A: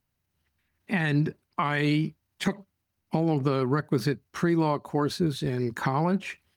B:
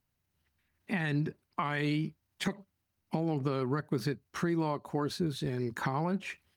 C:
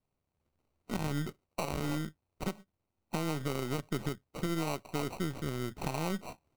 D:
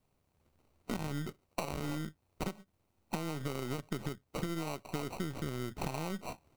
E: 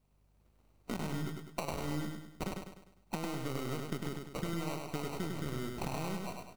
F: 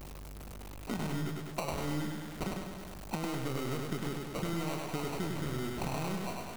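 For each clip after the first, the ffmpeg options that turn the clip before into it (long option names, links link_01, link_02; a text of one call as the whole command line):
ffmpeg -i in.wav -af "acompressor=threshold=-33dB:ratio=1.5,volume=-2dB" out.wav
ffmpeg -i in.wav -af "aeval=exprs='if(lt(val(0),0),0.447*val(0),val(0))':channel_layout=same,acrusher=samples=26:mix=1:aa=0.000001,volume=-1dB" out.wav
ffmpeg -i in.wav -af "acompressor=threshold=-42dB:ratio=5,volume=8dB" out.wav
ffmpeg -i in.wav -af "aeval=exprs='val(0)+0.000251*(sin(2*PI*50*n/s)+sin(2*PI*2*50*n/s)/2+sin(2*PI*3*50*n/s)/3+sin(2*PI*4*50*n/s)/4+sin(2*PI*5*50*n/s)/5)':channel_layout=same,aecho=1:1:101|202|303|404|505|606:0.631|0.284|0.128|0.0575|0.0259|0.0116,volume=-1.5dB" out.wav
ffmpeg -i in.wav -af "aeval=exprs='val(0)+0.5*0.0106*sgn(val(0))':channel_layout=same" out.wav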